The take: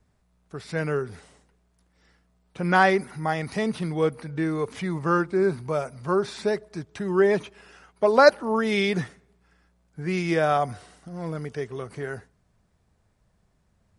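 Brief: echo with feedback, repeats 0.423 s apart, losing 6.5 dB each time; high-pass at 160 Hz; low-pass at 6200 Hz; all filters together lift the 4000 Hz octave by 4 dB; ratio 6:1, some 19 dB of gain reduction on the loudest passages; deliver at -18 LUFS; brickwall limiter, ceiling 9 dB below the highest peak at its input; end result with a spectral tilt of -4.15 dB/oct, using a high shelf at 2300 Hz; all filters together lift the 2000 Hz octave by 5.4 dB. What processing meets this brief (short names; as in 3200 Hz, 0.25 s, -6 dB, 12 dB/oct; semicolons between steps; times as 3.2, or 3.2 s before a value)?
HPF 160 Hz; LPF 6200 Hz; bell 2000 Hz +8 dB; high shelf 2300 Hz -4.5 dB; bell 4000 Hz +7 dB; compressor 6:1, threshold -29 dBFS; limiter -25.5 dBFS; feedback echo 0.423 s, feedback 47%, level -6.5 dB; gain +18 dB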